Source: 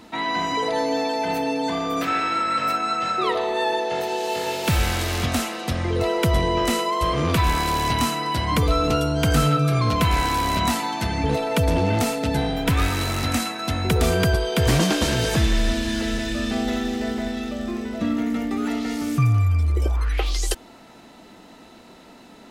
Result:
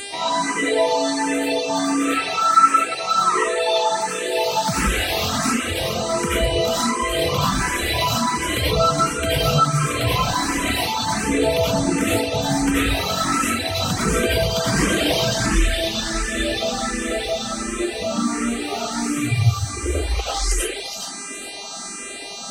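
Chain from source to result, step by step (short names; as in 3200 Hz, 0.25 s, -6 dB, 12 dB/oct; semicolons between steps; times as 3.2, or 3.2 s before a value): low shelf 70 Hz -8.5 dB; digital reverb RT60 0.9 s, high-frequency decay 0.7×, pre-delay 50 ms, DRR -9.5 dB; in parallel at +1 dB: compressor, threshold -20 dBFS, peak gain reduction 14.5 dB; on the sum: buzz 400 Hz, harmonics 24, -24 dBFS 0 dB/oct; on a send: thin delay 0.418 s, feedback 31%, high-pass 1900 Hz, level -5 dB; on the sum: reverb removal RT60 0.8 s; endless phaser +1.4 Hz; gain -4.5 dB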